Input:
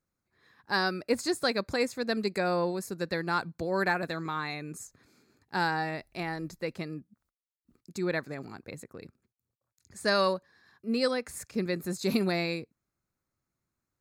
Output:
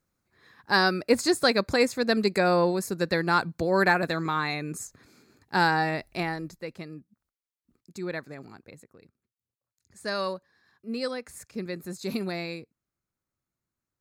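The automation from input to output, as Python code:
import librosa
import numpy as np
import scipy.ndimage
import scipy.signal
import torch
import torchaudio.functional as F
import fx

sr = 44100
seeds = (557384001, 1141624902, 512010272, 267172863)

y = fx.gain(x, sr, db=fx.line((6.19, 6.0), (6.61, -3.0), (8.5, -3.0), (9.04, -10.0), (10.36, -3.5)))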